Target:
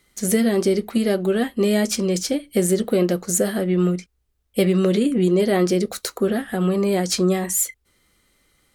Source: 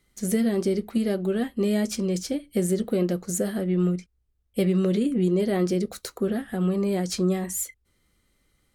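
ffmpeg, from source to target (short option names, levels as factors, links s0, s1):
-af "lowshelf=f=270:g=-8,volume=2.66"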